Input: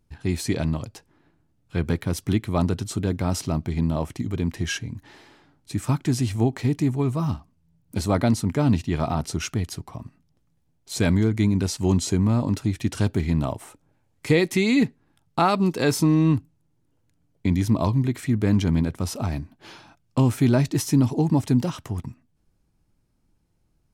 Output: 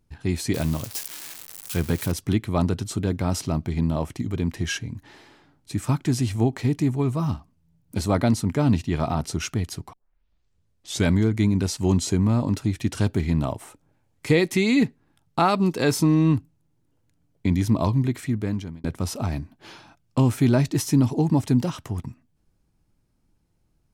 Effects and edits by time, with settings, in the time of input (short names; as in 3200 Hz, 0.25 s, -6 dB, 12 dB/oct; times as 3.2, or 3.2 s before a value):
0.54–2.12 switching spikes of -22.5 dBFS
9.93 tape start 1.15 s
18.13–18.84 fade out